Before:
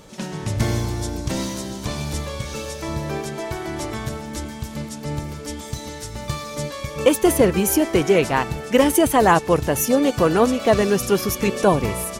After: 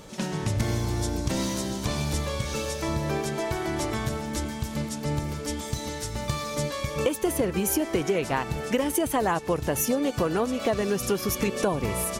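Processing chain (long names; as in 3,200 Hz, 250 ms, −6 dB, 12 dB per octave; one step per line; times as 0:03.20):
downward compressor, threshold −22 dBFS, peak gain reduction 12.5 dB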